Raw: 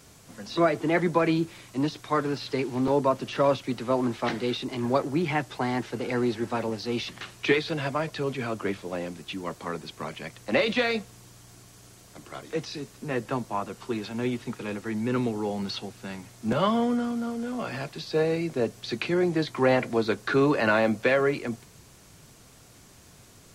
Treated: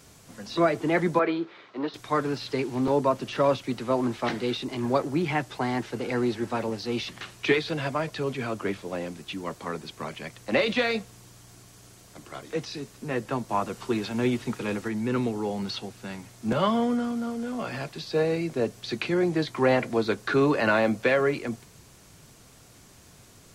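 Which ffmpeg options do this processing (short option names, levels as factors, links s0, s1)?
-filter_complex "[0:a]asettb=1/sr,asplit=3[s0][s1][s2];[s0]atrim=end=1.194[s3];[s1]atrim=start=1.19:end=1.94,asetpts=PTS-STARTPTS,afade=t=in:d=0.004:c=qsin,afade=t=out:st=0.746:d=0.004:c=qsin,highpass=360,equalizer=f=420:t=q:w=4:g=5,equalizer=f=1300:t=q:w=4:g=5,equalizer=f=2700:t=q:w=4:g=-6,lowpass=f=3700:w=0.5412,lowpass=f=3700:w=1.3066[s4];[s2]atrim=start=1.936[s5];[s3][s4]acrossfade=d=0.004:c1=hsin:c2=qsin[s6];[s6][s5]acrossfade=d=0.004:c1=qsin:c2=hsin,asplit=3[s7][s8][s9];[s7]atrim=end=13.492[s10];[s8]atrim=start=13.488:end=14.882,asetpts=PTS-STARTPTS,volume=1.5[s11];[s9]atrim=start=14.878[s12];[s10][s11]acrossfade=d=0.004:c1=hsin:c2=hsin[s13];[s13][s12]acrossfade=d=0.004:c1=hsin:c2=hsin"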